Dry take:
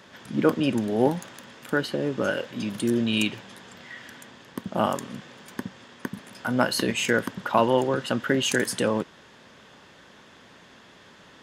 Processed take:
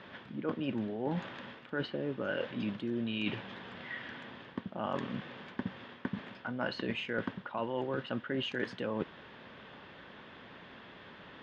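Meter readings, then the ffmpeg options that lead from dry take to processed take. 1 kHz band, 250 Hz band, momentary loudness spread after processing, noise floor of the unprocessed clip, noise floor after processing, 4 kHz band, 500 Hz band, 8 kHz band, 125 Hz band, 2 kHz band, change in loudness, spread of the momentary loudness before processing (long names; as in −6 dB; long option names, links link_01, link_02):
−12.5 dB, −10.0 dB, 16 LU, −52 dBFS, −53 dBFS, −11.0 dB, −11.5 dB, below −30 dB, −9.0 dB, −10.0 dB, −12.5 dB, 19 LU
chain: -af "lowpass=frequency=3500:width=0.5412,lowpass=frequency=3500:width=1.3066,areverse,acompressor=threshold=-31dB:ratio=12,areverse"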